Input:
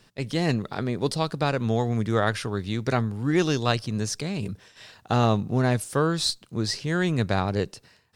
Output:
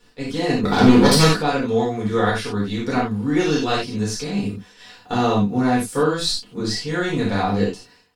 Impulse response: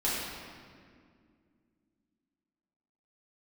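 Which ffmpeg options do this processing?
-filter_complex "[0:a]asettb=1/sr,asplit=3[s0][s1][s2];[s0]atrim=end=0.634[s3];[s1]atrim=start=0.63:end=1.33,asetpts=PTS-STARTPTS,afade=t=in:d=0.004:c=qsin,afade=t=out:st=0.696:d=0.004:c=qsin,aeval=exprs='0.282*sin(PI/2*3.55*val(0)/0.282)':c=same[s4];[s2]atrim=start=1.326[s5];[s3][s4]acrossfade=d=0.004:c1=hsin:c2=qsin[s6];[s6][s5]acrossfade=d=0.004:c1=qsin:c2=hsin,aecho=1:1:4.1:0.39[s7];[1:a]atrim=start_sample=2205,atrim=end_sample=4410[s8];[s7][s8]afir=irnorm=-1:irlink=0,volume=0.668"

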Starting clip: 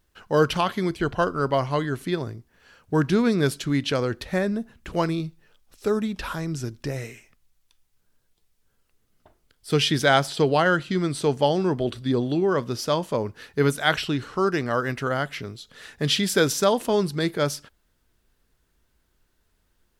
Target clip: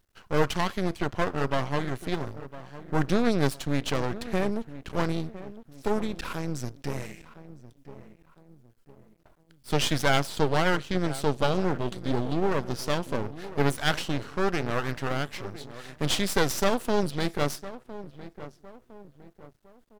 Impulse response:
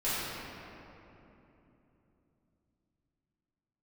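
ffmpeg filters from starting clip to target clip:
-filter_complex "[0:a]asplit=2[s0][s1];[s1]adelay=1008,lowpass=f=1200:p=1,volume=0.188,asplit=2[s2][s3];[s3]adelay=1008,lowpass=f=1200:p=1,volume=0.42,asplit=2[s4][s5];[s5]adelay=1008,lowpass=f=1200:p=1,volume=0.42,asplit=2[s6][s7];[s7]adelay=1008,lowpass=f=1200:p=1,volume=0.42[s8];[s0][s2][s4][s6][s8]amix=inputs=5:normalize=0,aeval=exprs='max(val(0),0)':c=same"

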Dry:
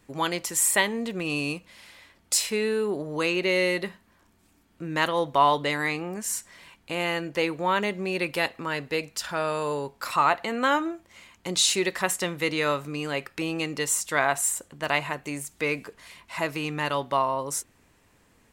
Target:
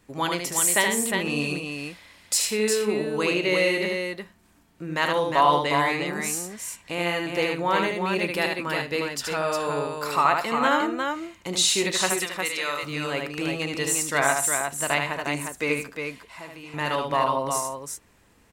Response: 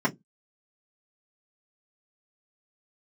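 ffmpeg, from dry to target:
-filter_complex "[0:a]asettb=1/sr,asplit=3[s0][s1][s2];[s0]atrim=end=12.124[s3];[s1]atrim=start=12.12:end=12.83,asetpts=PTS-STARTPTS,afade=t=in:d=0.004:c=qsin,afade=t=out:st=0.706:d=0.004:c=qsin,highpass=f=1300:p=1[s4];[s2]atrim=start=12.826[s5];[s3][s4]acrossfade=d=0.004:c1=hsin:c2=qsin[s6];[s6][s5]acrossfade=d=0.004:c1=qsin:c2=hsin,asettb=1/sr,asplit=3[s7][s8][s9];[s7]atrim=end=15.864[s10];[s8]atrim=start=15.86:end=16.74,asetpts=PTS-STARTPTS,afade=t=in:d=0.004:c=qsin,afade=t=out:st=0.876:d=0.004:c=qsin,acompressor=threshold=0.00316:ratio=2[s11];[s9]atrim=start=16.736[s12];[s10][s11]acrossfade=d=0.004:c1=hsin:c2=qsin[s13];[s13][s12]acrossfade=d=0.004:c1=qsin:c2=hsin,aecho=1:1:75|131|357:0.596|0.126|0.562"

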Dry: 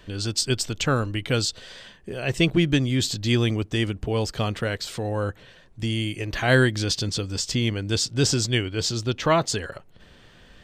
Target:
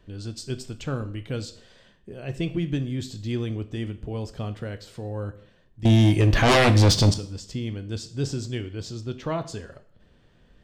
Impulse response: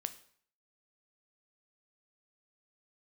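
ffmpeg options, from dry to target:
-filter_complex "[0:a]tiltshelf=f=820:g=5,asettb=1/sr,asplit=3[s0][s1][s2];[s0]atrim=end=5.854[s3];[s1]atrim=start=5.85:end=7.14,asetpts=PTS-STARTPTS,afade=t=in:d=0.004:c=qsin,afade=t=out:st=1.286:d=0.004:c=qsin,aeval=exprs='0.668*sin(PI/2*5.62*val(0)/0.668)':c=same[s4];[s2]atrim=start=7.136[s5];[s3][s4]acrossfade=d=0.004:c1=hsin:c2=qsin[s6];[s6][s5]acrossfade=d=0.004:c1=qsin:c2=hsin[s7];[1:a]atrim=start_sample=2205[s8];[s7][s8]afir=irnorm=-1:irlink=0,volume=0.376"

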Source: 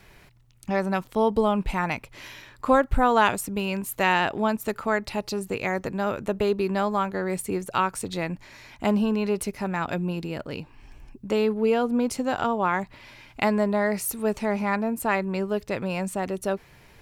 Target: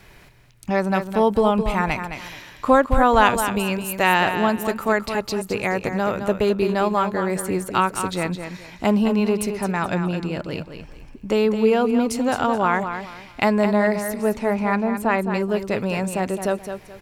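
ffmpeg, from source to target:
-filter_complex "[0:a]asettb=1/sr,asplit=3[s0][s1][s2];[s0]atrim=end=9.504[s3];[s1]atrim=start=9.5:end=10.42,asetpts=PTS-STARTPTS,afade=t=in:d=0.004:c=qsin,afade=t=out:st=0.916:d=0.004:c=qsin,lowpass=9400[s4];[s2]atrim=start=10.416[s5];[s3][s4]acrossfade=d=0.004:c1=hsin:c2=qsin[s6];[s6][s5]acrossfade=d=0.004:c1=qsin:c2=hsin,asettb=1/sr,asplit=3[s7][s8][s9];[s7]atrim=end=13.964[s10];[s8]atrim=start=13.96:end=15.31,asetpts=PTS-STARTPTS,afade=t=in:d=0.004:c=qsin,afade=t=out:st=1.346:d=0.004:c=qsin,highshelf=f=4200:g=-9.5[s11];[s9]atrim=start=15.306[s12];[s10][s11]acrossfade=d=0.004:c1=hsin:c2=qsin[s13];[s13][s12]acrossfade=d=0.004:c1=qsin:c2=hsin,aecho=1:1:214|428|642:0.376|0.101|0.0274,volume=1.58"

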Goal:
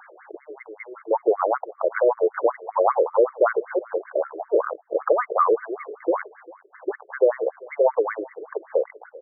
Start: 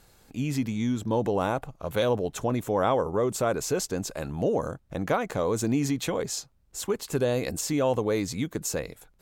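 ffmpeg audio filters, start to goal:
-filter_complex "[0:a]asettb=1/sr,asplit=3[s0][s1][s2];[s0]atrim=end=4.974[s3];[s1]atrim=start=4.97:end=5.54,asetpts=PTS-STARTPTS,afade=t=in:d=0.004:c=qsin,afade=t=out:st=0.566:d=0.004:c=qsin,equalizer=f=1200:t=o:w=0.3:g=13.5[s4];[s2]atrim=start=5.536[s5];[s3][s4]acrossfade=d=0.004:c1=hsin:c2=qsin[s6];[s6][s5]acrossfade=d=0.004:c1=qsin:c2=hsin,acompressor=threshold=0.00708:ratio=2,aexciter=amount=5:drive=7.6:freq=6800,aresample=22050,aresample=44100,asplit=2[s7][s8];[s8]aecho=0:1:396|792:0.0841|0.0194[s9];[s7][s9]amix=inputs=2:normalize=0,alimiter=level_in=8.91:limit=0.891:release=50:level=0:latency=1,afftfilt=real='re*between(b*sr/1024,430*pow(1600/430,0.5+0.5*sin(2*PI*5.2*pts/sr))/1.41,430*pow(1600/430,0.5+0.5*sin(2*PI*5.2*pts/sr))*1.41)':imag='im*between(b*sr/1024,430*pow(1600/430,0.5+0.5*sin(2*PI*5.2*pts/sr))/1.41,430*pow(1600/430,0.5+0.5*sin(2*PI*5.2*pts/sr))*1.41)':win_size=1024:overlap=0.75,volume=1.33"

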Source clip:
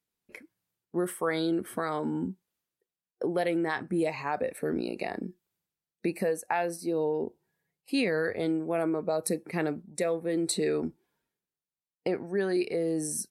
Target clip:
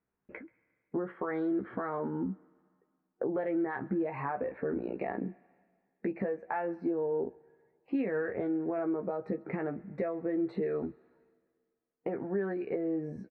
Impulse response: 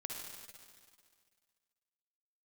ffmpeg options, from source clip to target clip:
-filter_complex "[0:a]lowpass=f=1800:w=0.5412,lowpass=f=1800:w=1.3066,alimiter=level_in=1.26:limit=0.0631:level=0:latency=1:release=235,volume=0.794,acompressor=threshold=0.0178:ratio=6,asplit=2[s0][s1];[s1]adelay=15,volume=0.501[s2];[s0][s2]amix=inputs=2:normalize=0,asplit=2[s3][s4];[1:a]atrim=start_sample=2205,lowshelf=f=470:g=-11.5,adelay=133[s5];[s4][s5]afir=irnorm=-1:irlink=0,volume=0.106[s6];[s3][s6]amix=inputs=2:normalize=0,volume=1.78"

